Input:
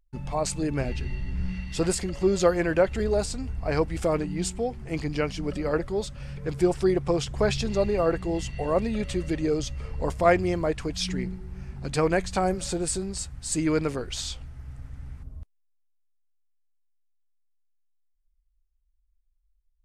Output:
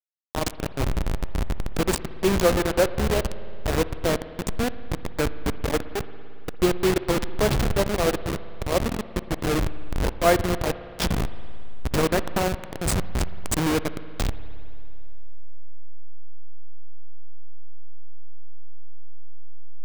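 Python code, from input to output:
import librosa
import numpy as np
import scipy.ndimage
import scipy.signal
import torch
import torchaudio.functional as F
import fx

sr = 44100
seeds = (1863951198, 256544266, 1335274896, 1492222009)

p1 = fx.delta_hold(x, sr, step_db=-19.5)
p2 = fx.schmitt(p1, sr, flips_db=-31.0)
p3 = p1 + F.gain(torch.from_numpy(p2), -7.0).numpy()
p4 = fx.rev_spring(p3, sr, rt60_s=2.6, pass_ms=(56,), chirp_ms=30, drr_db=14.0)
y = F.gain(torch.from_numpy(p4), 1.0).numpy()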